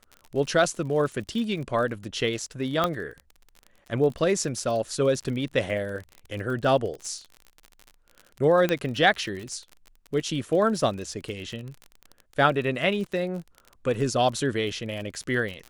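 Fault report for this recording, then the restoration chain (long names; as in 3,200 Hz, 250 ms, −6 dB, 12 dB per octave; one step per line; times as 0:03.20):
surface crackle 36 per second −33 dBFS
0:02.84: click −10 dBFS
0:08.69: click −11 dBFS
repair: click removal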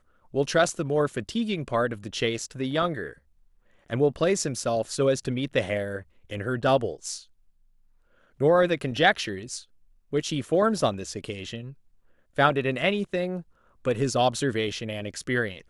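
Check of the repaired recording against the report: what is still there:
0:02.84: click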